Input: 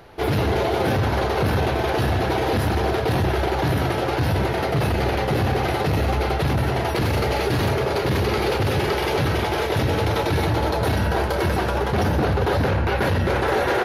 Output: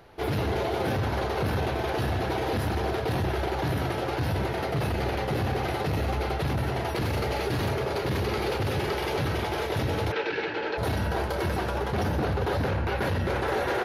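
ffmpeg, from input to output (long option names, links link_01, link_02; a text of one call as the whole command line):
ffmpeg -i in.wav -filter_complex "[0:a]asplit=3[link_01][link_02][link_03];[link_01]afade=type=out:start_time=10.11:duration=0.02[link_04];[link_02]highpass=350,equalizer=frequency=430:width_type=q:width=4:gain=6,equalizer=frequency=670:width_type=q:width=4:gain=-8,equalizer=frequency=1100:width_type=q:width=4:gain=-7,equalizer=frequency=1600:width_type=q:width=4:gain=8,equalizer=frequency=2600:width_type=q:width=4:gain=7,equalizer=frequency=3800:width_type=q:width=4:gain=-3,lowpass=frequency=4700:width=0.5412,lowpass=frequency=4700:width=1.3066,afade=type=in:start_time=10.11:duration=0.02,afade=type=out:start_time=10.77:duration=0.02[link_05];[link_03]afade=type=in:start_time=10.77:duration=0.02[link_06];[link_04][link_05][link_06]amix=inputs=3:normalize=0,volume=-6.5dB" out.wav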